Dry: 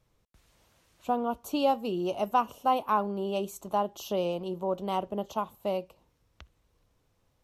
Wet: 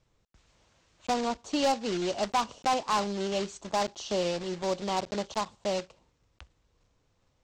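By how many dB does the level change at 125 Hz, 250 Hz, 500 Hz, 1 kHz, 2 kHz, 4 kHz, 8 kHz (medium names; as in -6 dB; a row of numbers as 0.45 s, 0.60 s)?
0.0 dB, 0.0 dB, -0.5 dB, -1.5 dB, +5.0 dB, +7.0 dB, +9.0 dB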